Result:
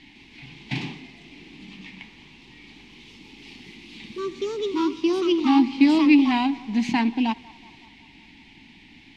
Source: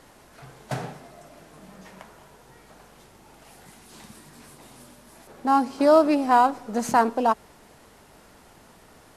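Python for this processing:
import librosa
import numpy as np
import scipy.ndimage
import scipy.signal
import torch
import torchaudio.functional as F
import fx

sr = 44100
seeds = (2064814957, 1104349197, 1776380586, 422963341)

p1 = fx.curve_eq(x, sr, hz=(140.0, 290.0, 560.0, 850.0, 1300.0, 2200.0, 3800.0, 11000.0), db=(0, 9, -26, -3, -21, 14, 8, -25))
p2 = p1 + fx.echo_banded(p1, sr, ms=186, feedback_pct=66, hz=940.0, wet_db=-21, dry=0)
y = fx.echo_pitch(p2, sr, ms=155, semitones=3, count=2, db_per_echo=-6.0)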